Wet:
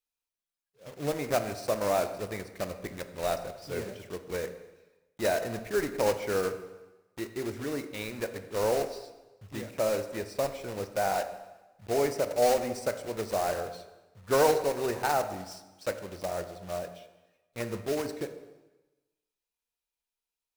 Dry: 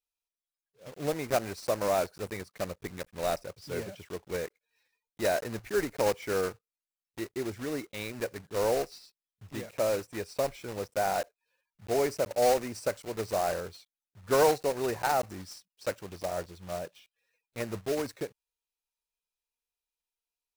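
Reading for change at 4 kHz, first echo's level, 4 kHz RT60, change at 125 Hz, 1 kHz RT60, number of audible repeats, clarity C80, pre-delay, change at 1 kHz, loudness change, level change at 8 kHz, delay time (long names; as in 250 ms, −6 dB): +0.5 dB, no echo audible, 1.0 s, +0.5 dB, 1.1 s, no echo audible, 12.5 dB, 7 ms, +0.5 dB, +0.5 dB, +0.5 dB, no echo audible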